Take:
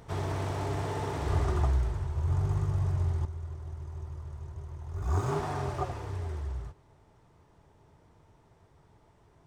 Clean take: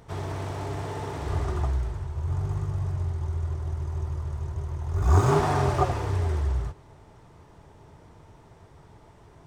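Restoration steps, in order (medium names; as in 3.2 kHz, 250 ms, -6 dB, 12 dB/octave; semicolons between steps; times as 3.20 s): gain correction +9.5 dB, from 3.25 s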